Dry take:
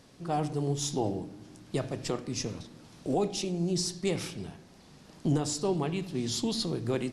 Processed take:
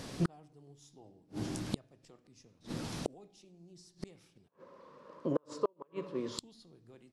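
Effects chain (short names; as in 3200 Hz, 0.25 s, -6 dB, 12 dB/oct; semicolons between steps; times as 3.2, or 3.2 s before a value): 4.48–6.39 double band-pass 750 Hz, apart 0.96 oct; flipped gate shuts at -31 dBFS, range -39 dB; gain +12 dB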